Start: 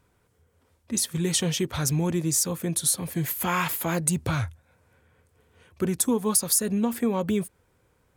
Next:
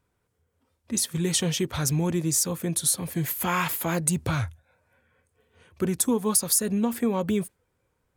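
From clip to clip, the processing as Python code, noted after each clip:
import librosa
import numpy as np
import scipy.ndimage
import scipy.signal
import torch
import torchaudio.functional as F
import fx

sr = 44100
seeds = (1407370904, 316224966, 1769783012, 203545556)

y = fx.noise_reduce_blind(x, sr, reduce_db=8)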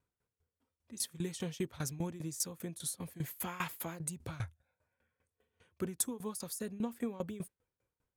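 y = fx.tremolo_decay(x, sr, direction='decaying', hz=5.0, depth_db=18)
y = y * 10.0 ** (-7.5 / 20.0)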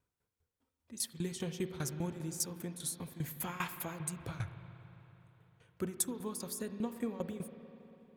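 y = fx.rev_spring(x, sr, rt60_s=3.5, pass_ms=(40, 56), chirp_ms=35, drr_db=8.5)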